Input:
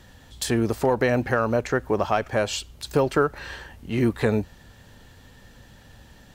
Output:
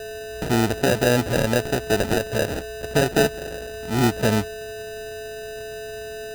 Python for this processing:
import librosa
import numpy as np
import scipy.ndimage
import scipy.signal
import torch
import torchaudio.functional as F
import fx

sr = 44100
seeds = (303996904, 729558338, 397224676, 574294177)

y = x + 10.0 ** (-34.0 / 20.0) * np.sin(2.0 * np.pi * 430.0 * np.arange(len(x)) / sr)
y = fx.sample_hold(y, sr, seeds[0], rate_hz=1100.0, jitter_pct=0)
y = fx.hpss(y, sr, part='harmonic', gain_db=3)